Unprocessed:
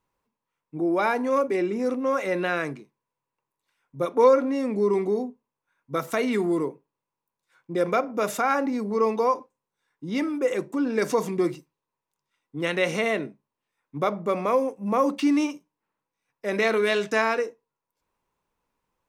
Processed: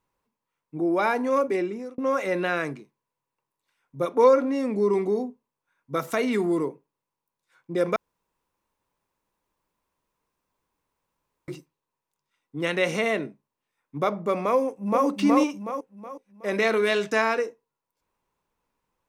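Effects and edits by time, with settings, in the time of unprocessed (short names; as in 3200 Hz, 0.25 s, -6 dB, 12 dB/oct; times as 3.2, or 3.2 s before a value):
1.54–1.98 fade out
7.96–11.48 room tone
14.57–15.06 echo throw 0.37 s, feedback 40%, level -1 dB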